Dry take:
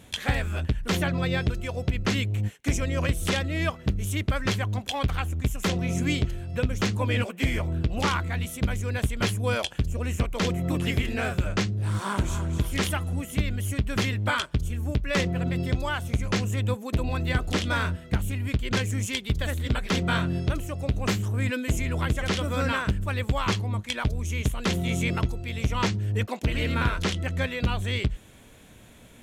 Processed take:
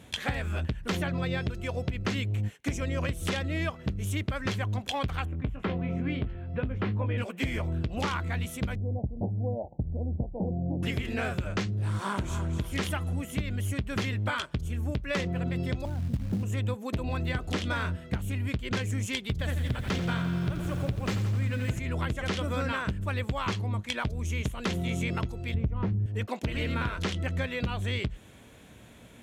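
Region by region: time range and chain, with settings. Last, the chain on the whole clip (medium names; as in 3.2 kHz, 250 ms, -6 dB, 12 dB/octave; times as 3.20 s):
5.25–7.18 s: distance through air 450 m + doubling 19 ms -7 dB
8.75–10.83 s: steep low-pass 850 Hz 96 dB/octave + peaking EQ 410 Hz -5 dB 0.73 oct
15.85–16.43 s: resonant low-pass 300 Hz, resonance Q 1.7 + comb 1.3 ms, depth 61% + companded quantiser 6-bit
19.31–21.79 s: peaking EQ 120 Hz +7.5 dB 0.59 oct + bit-crushed delay 86 ms, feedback 80%, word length 7-bit, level -9 dB
25.54–26.06 s: low-pass 1.6 kHz 6 dB/octave + tilt EQ -3.5 dB/octave
whole clip: high-pass 51 Hz; treble shelf 5.3 kHz -5.5 dB; compression, threshold -26 dBFS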